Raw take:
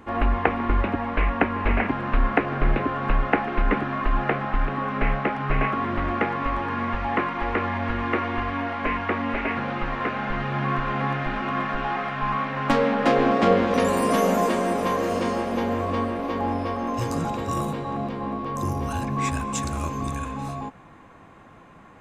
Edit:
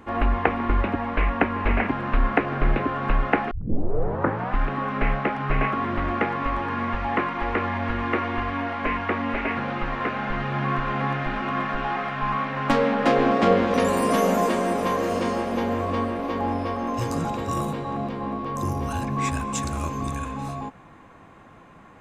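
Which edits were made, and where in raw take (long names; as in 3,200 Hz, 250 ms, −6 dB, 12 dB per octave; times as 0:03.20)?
0:03.51: tape start 1.06 s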